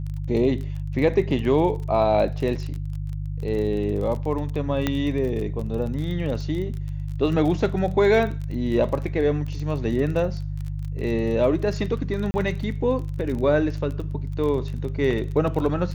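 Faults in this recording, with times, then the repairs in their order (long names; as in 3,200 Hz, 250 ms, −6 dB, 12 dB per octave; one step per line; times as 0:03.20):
surface crackle 25 per second −30 dBFS
mains hum 50 Hz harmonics 3 −29 dBFS
0:04.87: click −9 dBFS
0:12.31–0:12.34: drop-out 30 ms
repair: click removal
hum removal 50 Hz, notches 3
repair the gap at 0:12.31, 30 ms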